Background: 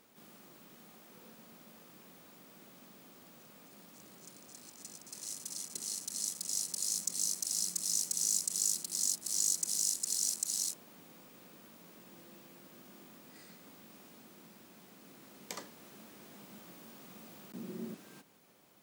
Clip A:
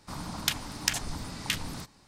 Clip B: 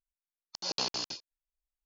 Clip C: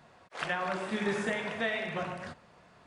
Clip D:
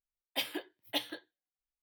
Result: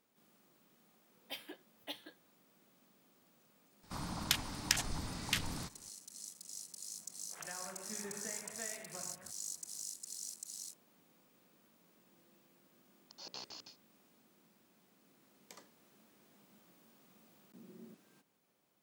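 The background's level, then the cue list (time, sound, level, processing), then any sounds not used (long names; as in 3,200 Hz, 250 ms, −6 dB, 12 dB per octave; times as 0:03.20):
background −12.5 dB
0:00.94: mix in D −11.5 dB
0:03.83: mix in A −4 dB
0:06.98: mix in C −16 dB + low-pass filter 3,000 Hz
0:12.56: mix in B −15.5 dB + mains-hum notches 60/120/180/240/300/360/420/480/540/600 Hz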